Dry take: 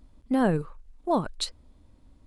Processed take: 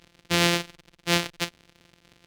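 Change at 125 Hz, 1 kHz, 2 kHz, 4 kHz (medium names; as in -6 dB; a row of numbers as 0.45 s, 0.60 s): +1.5 dB, -1.0 dB, +12.5 dB, +10.5 dB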